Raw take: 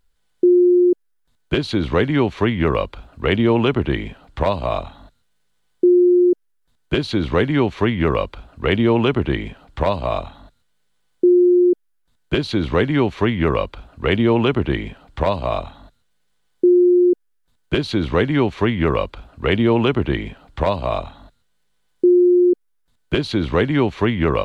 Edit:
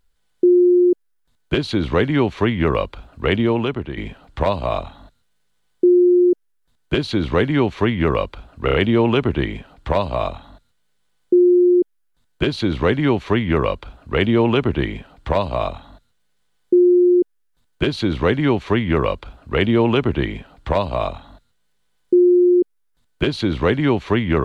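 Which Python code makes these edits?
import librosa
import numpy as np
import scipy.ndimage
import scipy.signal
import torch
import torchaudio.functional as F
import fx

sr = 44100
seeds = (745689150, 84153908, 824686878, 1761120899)

y = fx.edit(x, sr, fx.fade_out_to(start_s=3.28, length_s=0.69, floor_db=-11.0),
    fx.stutter(start_s=8.65, slice_s=0.03, count=4), tone=tone)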